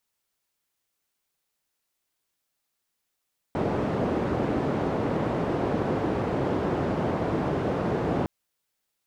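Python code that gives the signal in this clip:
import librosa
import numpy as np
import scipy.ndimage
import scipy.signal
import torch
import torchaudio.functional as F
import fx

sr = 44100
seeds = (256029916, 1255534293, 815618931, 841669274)

y = fx.band_noise(sr, seeds[0], length_s=4.71, low_hz=88.0, high_hz=510.0, level_db=-26.5)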